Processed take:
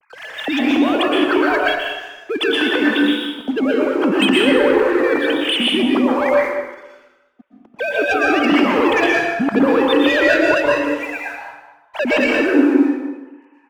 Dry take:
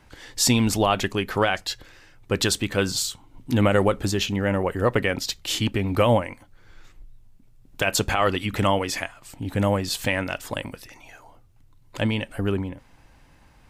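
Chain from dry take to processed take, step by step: sine-wave speech; negative-ratio compressor -27 dBFS, ratio -1; sample leveller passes 2; on a send: echo 0.199 s -14 dB; on the sum: plate-style reverb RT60 1.1 s, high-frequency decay 0.65×, pre-delay 0.105 s, DRR -3 dB; gain +1.5 dB

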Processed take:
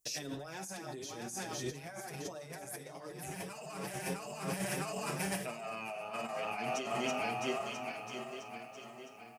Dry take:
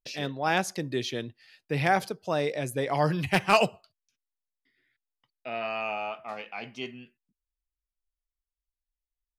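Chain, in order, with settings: regenerating reverse delay 0.33 s, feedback 70%, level -6 dB; resonant high shelf 5100 Hz +12 dB, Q 1.5; feedback echo 0.686 s, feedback 47%, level -19 dB; in parallel at -4.5 dB: soft clip -15 dBFS, distortion -17 dB; on the sum: HPF 58 Hz; on a send at -9 dB: reverb RT60 0.60 s, pre-delay 3 ms; on the sum: limiter -14 dBFS, peak gain reduction 10 dB; notches 50/100/150/200/250 Hz; negative-ratio compressor -36 dBFS, ratio -1; endless flanger 6.7 ms +2.6 Hz; gain -2 dB

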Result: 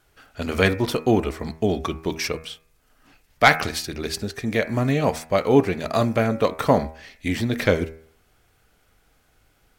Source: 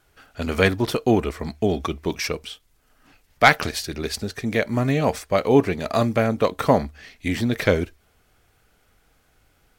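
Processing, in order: de-hum 79.96 Hz, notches 33

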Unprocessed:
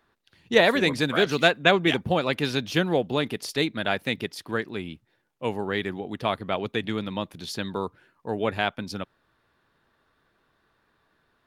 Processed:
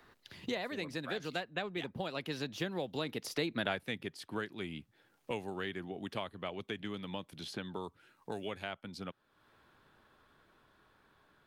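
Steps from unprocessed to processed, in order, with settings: Doppler pass-by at 3.66, 18 m/s, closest 2.2 m; three-band squash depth 100%; gain +6 dB

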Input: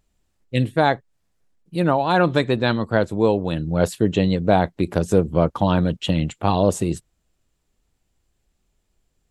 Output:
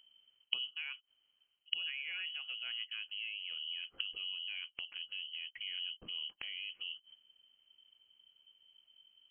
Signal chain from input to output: one diode to ground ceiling -3 dBFS; gate with hold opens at -35 dBFS; low shelf 140 Hz +8.5 dB; in parallel at +2 dB: compressor, threshold -23 dBFS, peak gain reduction 14 dB; on the sum: limiter -8 dBFS, peak gain reduction 9.5 dB; treble ducked by the level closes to 1600 Hz, closed at -15 dBFS; flipped gate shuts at -26 dBFS, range -33 dB; inverted band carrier 3100 Hz; gain +8 dB

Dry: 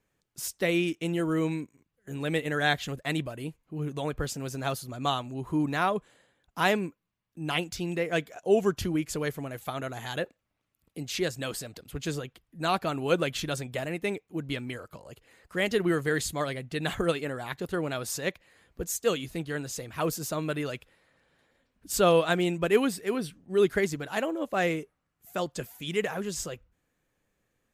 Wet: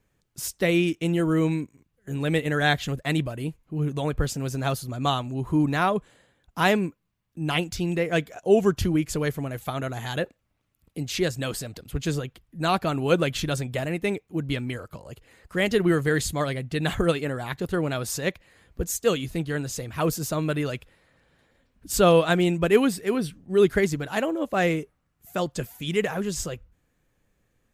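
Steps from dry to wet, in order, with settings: low shelf 160 Hz +8.5 dB; gain +3 dB

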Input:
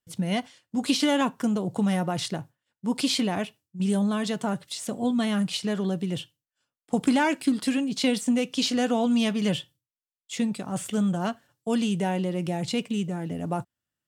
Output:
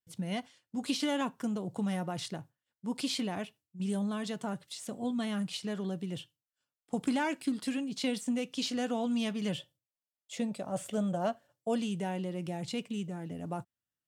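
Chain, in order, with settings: 9.58–11.8 bell 600 Hz +12.5 dB 0.59 oct; gain -8.5 dB

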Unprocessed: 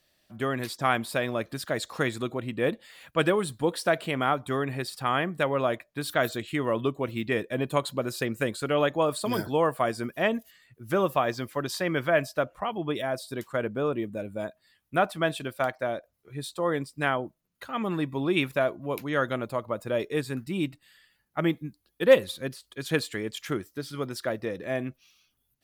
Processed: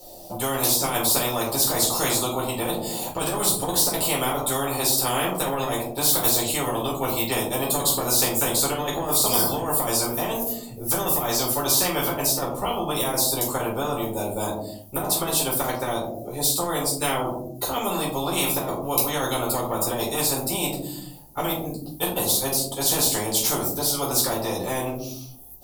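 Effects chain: EQ curve 120 Hz 0 dB, 760 Hz +15 dB, 1700 Hz -20 dB, 5100 Hz +4 dB, 15000 Hz +15 dB; negative-ratio compressor -16 dBFS, ratio -0.5; shoebox room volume 230 m³, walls furnished, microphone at 4.3 m; spectral compressor 4:1; gain -6.5 dB

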